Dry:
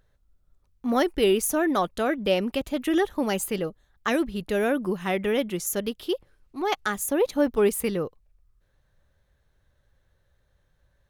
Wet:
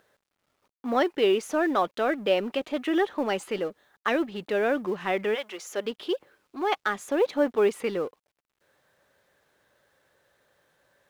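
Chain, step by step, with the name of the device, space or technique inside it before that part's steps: phone line with mismatched companding (BPF 320–3400 Hz; G.711 law mismatch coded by mu); 5.34–5.85 HPF 1000 Hz -> 260 Hz 12 dB/oct

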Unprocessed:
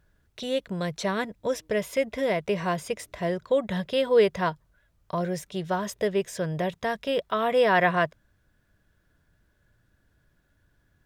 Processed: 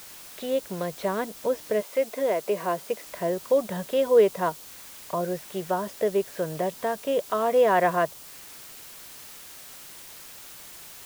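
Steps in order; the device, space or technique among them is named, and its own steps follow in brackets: wax cylinder (BPF 250–2300 Hz; wow and flutter 18 cents; white noise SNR 18 dB); 1.8–3.05 HPF 370 Hz -> 170 Hz 12 dB/oct; dynamic EQ 1900 Hz, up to -7 dB, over -45 dBFS, Q 1.2; gain +2.5 dB

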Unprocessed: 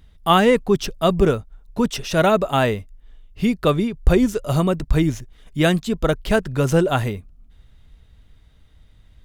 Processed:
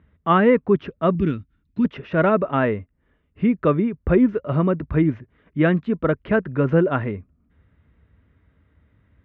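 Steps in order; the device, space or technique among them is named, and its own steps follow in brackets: bass cabinet (speaker cabinet 71–2100 Hz, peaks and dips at 120 Hz -5 dB, 280 Hz +3 dB, 770 Hz -8 dB); 1.15–1.85 EQ curve 310 Hz 0 dB, 490 Hz -20 dB, 950 Hz -16 dB, 4700 Hz +13 dB

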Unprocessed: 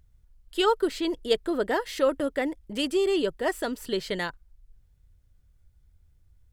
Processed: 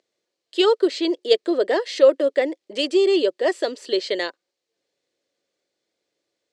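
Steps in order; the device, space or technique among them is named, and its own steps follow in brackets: phone speaker on a table (speaker cabinet 330–7300 Hz, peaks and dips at 350 Hz +4 dB, 550 Hz +6 dB, 900 Hz -7 dB, 1400 Hz -8 dB, 4300 Hz +5 dB); gain +5 dB

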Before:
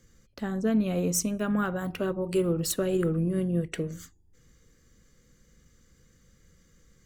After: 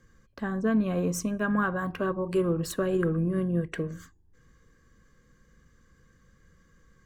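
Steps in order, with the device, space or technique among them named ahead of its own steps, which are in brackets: inside a helmet (high shelf 3200 Hz -9 dB; small resonant body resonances 1100/1600 Hz, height 13 dB, ringing for 30 ms)

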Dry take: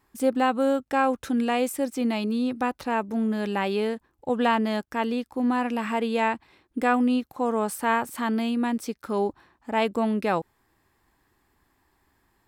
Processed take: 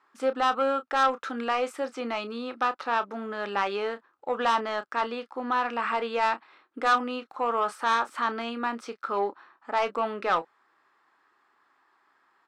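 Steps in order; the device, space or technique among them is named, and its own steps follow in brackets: intercom (BPF 460–4400 Hz; bell 1300 Hz +11.5 dB 0.5 oct; soft clip -16.5 dBFS, distortion -11 dB; doubler 30 ms -12 dB)

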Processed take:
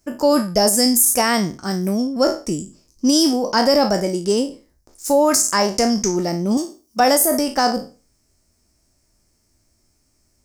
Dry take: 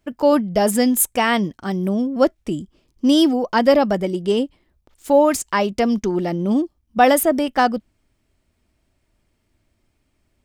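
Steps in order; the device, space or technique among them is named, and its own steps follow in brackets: spectral trails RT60 0.34 s; 6.57–7 tilt +3 dB/oct; over-bright horn tweeter (resonant high shelf 4300 Hz +9 dB, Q 3; limiter -6 dBFS, peak gain reduction 11 dB)

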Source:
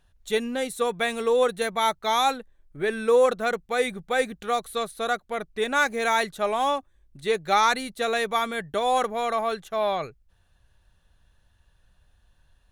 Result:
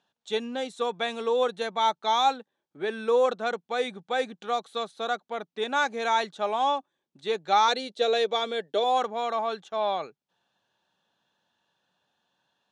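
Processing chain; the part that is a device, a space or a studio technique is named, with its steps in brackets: 7.68–8.84 graphic EQ 125/500/1000/4000 Hz -11/+10/-8/+5 dB; television speaker (speaker cabinet 190–7000 Hz, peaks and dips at 850 Hz +6 dB, 2000 Hz -5 dB, 3400 Hz +4 dB); gain -4 dB

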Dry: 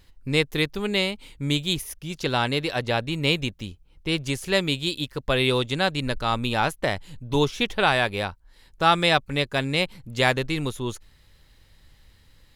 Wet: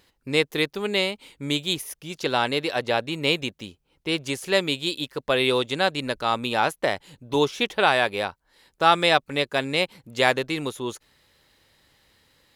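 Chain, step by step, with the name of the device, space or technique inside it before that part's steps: filter by subtraction (in parallel: LPF 460 Hz 12 dB/oct + phase invert)

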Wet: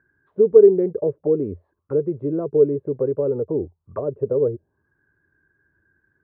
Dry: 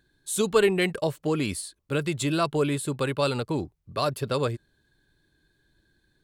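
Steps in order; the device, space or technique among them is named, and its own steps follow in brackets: envelope filter bass rig (envelope low-pass 460–1500 Hz down, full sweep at -24.5 dBFS; speaker cabinet 68–2100 Hz, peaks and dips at 87 Hz +9 dB, 400 Hz +4 dB, 730 Hz -3 dB); gain -3 dB

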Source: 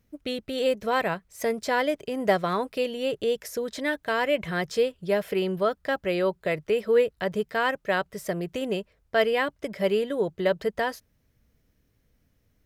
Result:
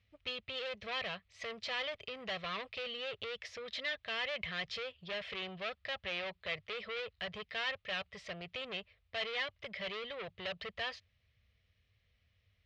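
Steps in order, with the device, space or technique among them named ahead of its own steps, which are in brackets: scooped metal amplifier (tube stage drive 30 dB, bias 0.2; speaker cabinet 85–3600 Hz, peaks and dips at 93 Hz +6 dB, 150 Hz -7 dB, 900 Hz -10 dB, 1500 Hz -10 dB; passive tone stack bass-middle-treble 10-0-10); gain +8 dB

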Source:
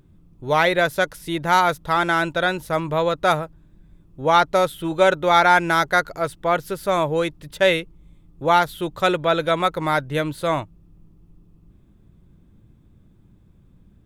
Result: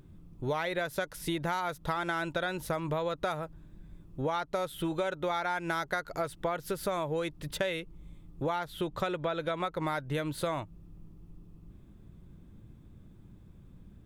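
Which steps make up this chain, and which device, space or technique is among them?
8.56–9.87 high shelf 6000 Hz -7 dB; serial compression, leveller first (compressor 2:1, threshold -22 dBFS, peak gain reduction 7 dB; compressor 6:1, threshold -29 dBFS, peak gain reduction 12 dB)

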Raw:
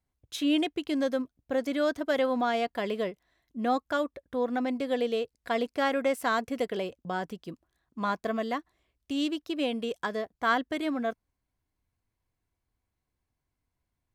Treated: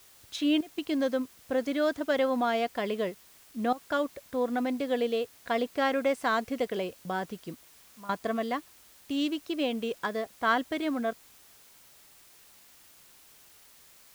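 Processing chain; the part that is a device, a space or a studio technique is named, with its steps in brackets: worn cassette (LPF 7400 Hz; wow and flutter 28 cents; level dips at 0.61/3.73/7.92, 0.169 s -16 dB; white noise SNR 25 dB)

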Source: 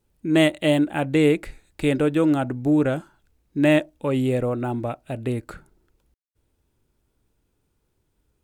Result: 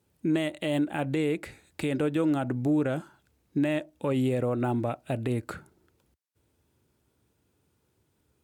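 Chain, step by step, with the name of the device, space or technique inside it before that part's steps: podcast mastering chain (HPF 73 Hz 24 dB/oct; compressor 3:1, threshold -25 dBFS, peak gain reduction 10 dB; limiter -19 dBFS, peak gain reduction 6 dB; gain +2 dB; MP3 112 kbps 48000 Hz)

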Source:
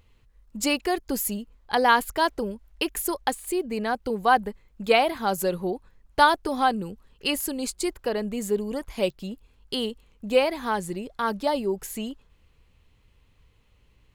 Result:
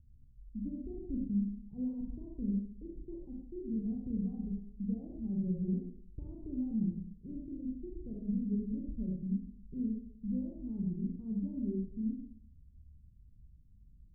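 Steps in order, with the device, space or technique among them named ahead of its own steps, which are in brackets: club heard from the street (limiter -16 dBFS, peak gain reduction 11.5 dB; LPF 210 Hz 24 dB/oct; reverb RT60 0.65 s, pre-delay 30 ms, DRR -1.5 dB); gain -1.5 dB

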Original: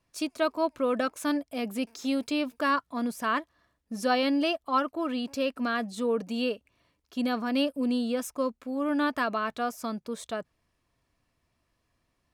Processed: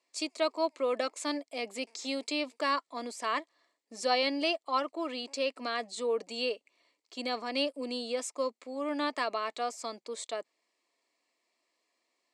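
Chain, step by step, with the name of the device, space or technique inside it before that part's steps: phone speaker on a table (speaker cabinet 330–8800 Hz, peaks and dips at 1500 Hz -10 dB, 2100 Hz +7 dB, 4400 Hz +7 dB, 7600 Hz +9 dB); gain -2 dB

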